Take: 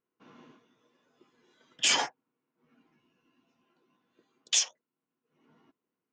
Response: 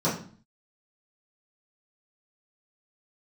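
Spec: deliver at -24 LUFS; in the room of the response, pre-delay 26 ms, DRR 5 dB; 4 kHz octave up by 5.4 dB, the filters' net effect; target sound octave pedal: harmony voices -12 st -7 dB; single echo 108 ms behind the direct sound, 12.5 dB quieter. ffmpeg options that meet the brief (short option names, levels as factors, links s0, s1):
-filter_complex "[0:a]equalizer=f=4000:t=o:g=7.5,aecho=1:1:108:0.237,asplit=2[s0][s1];[1:a]atrim=start_sample=2205,adelay=26[s2];[s1][s2]afir=irnorm=-1:irlink=0,volume=0.133[s3];[s0][s3]amix=inputs=2:normalize=0,asplit=2[s4][s5];[s5]asetrate=22050,aresample=44100,atempo=2,volume=0.447[s6];[s4][s6]amix=inputs=2:normalize=0,volume=0.794"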